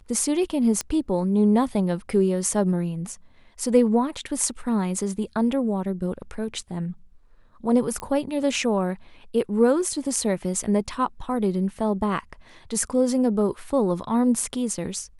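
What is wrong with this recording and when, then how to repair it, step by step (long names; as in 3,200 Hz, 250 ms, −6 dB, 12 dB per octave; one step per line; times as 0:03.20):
0:00.81: click −12 dBFS
0:08.00: click −17 dBFS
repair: click removal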